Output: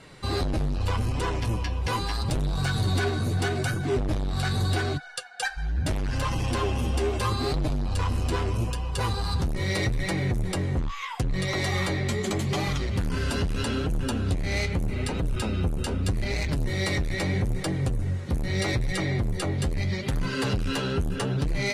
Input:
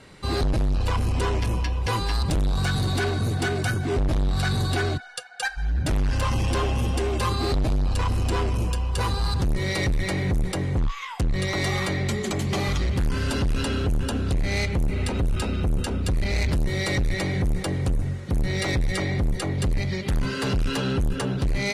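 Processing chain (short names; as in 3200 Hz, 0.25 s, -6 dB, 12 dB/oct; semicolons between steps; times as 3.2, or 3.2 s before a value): compressor 2.5:1, threshold -24 dBFS, peak gain reduction 2.5 dB; flange 0.79 Hz, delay 5.8 ms, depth 7.8 ms, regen +42%; gain +4 dB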